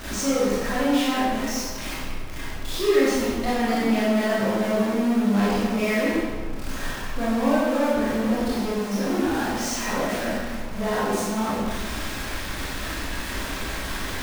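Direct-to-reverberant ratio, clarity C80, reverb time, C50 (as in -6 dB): -9.0 dB, 0.0 dB, 1.7 s, -3.0 dB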